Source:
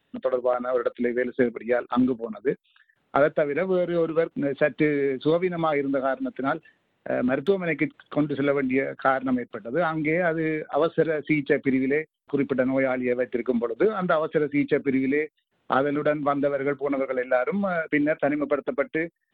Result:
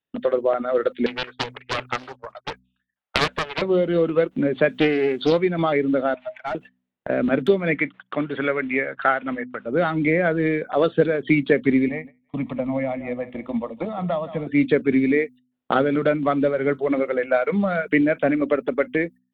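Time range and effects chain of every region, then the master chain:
1.06–3.62 s: high-pass 640 Hz 24 dB/octave + loudspeaker Doppler distortion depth 0.88 ms
4.69–5.38 s: tone controls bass -5 dB, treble +10 dB + loudspeaker Doppler distortion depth 0.33 ms
6.14–6.55 s: rippled Chebyshev high-pass 610 Hz, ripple 9 dB + overdrive pedal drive 16 dB, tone 1.1 kHz, clips at -20.5 dBFS
7.75–9.66 s: low-pass 1.9 kHz + tilt shelf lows -9 dB, about 890 Hz
11.88–14.47 s: feedback delay 165 ms, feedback 38%, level -16 dB + dynamic bell 2.5 kHz, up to -8 dB, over -44 dBFS, Q 0.93 + static phaser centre 1.5 kHz, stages 6
whole clip: gate -42 dBFS, range -25 dB; de-hum 62.75 Hz, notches 4; dynamic bell 990 Hz, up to -5 dB, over -33 dBFS, Q 0.84; trim +5.5 dB

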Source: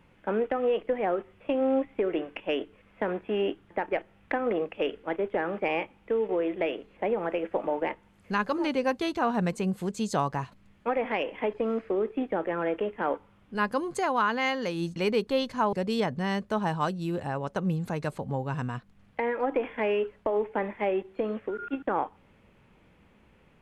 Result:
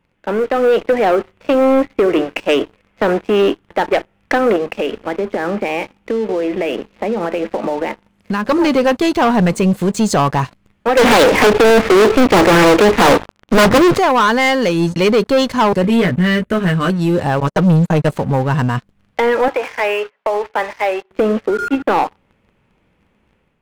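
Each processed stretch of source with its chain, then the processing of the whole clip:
4.56–8.49 s: peaking EQ 220 Hz +8 dB 0.29 oct + compression 4:1, threshold -33 dBFS
10.97–13.98 s: distance through air 300 m + waveshaping leveller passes 5 + loudspeaker Doppler distortion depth 0.76 ms
15.82–16.90 s: static phaser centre 2.1 kHz, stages 4 + doubling 17 ms -4 dB
17.40–18.09 s: gate -36 dBFS, range -24 dB + comb 6.4 ms, depth 86%
19.48–21.11 s: high-pass 750 Hz + distance through air 140 m
whole clip: waveshaping leveller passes 3; level rider gain up to 6 dB

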